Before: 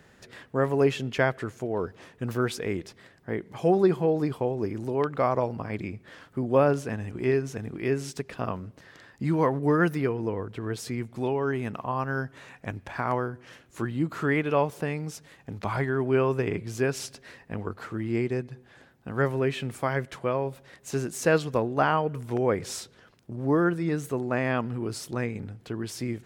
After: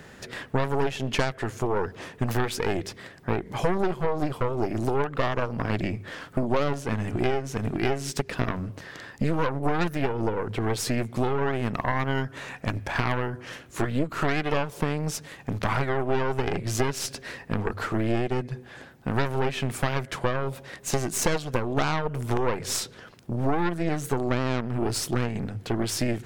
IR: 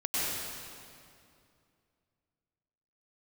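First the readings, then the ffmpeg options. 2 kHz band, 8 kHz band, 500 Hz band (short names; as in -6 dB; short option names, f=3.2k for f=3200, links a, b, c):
+1.5 dB, +7.5 dB, -2.0 dB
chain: -af "aeval=exprs='0.355*(cos(1*acos(clip(val(0)/0.355,-1,1)))-cos(1*PI/2))+0.0224*(cos(5*acos(clip(val(0)/0.355,-1,1)))-cos(5*PI/2))+0.112*(cos(6*acos(clip(val(0)/0.355,-1,1)))-cos(6*PI/2))':c=same,bandreject=f=50:t=h:w=6,bandreject=f=100:t=h:w=6,acompressor=threshold=-28dB:ratio=6,volume=7dB"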